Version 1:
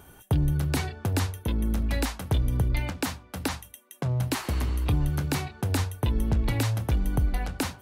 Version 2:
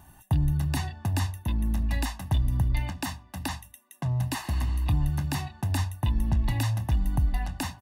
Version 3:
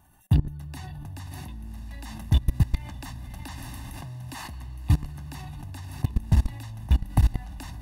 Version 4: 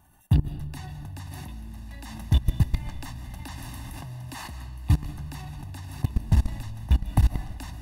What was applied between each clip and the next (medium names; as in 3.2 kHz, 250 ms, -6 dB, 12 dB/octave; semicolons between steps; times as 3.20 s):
comb 1.1 ms, depth 90%; trim -5 dB
echo that smears into a reverb 621 ms, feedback 42%, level -8.5 dB; level held to a coarse grid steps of 22 dB; trim +6.5 dB
reverberation RT60 0.70 s, pre-delay 110 ms, DRR 11.5 dB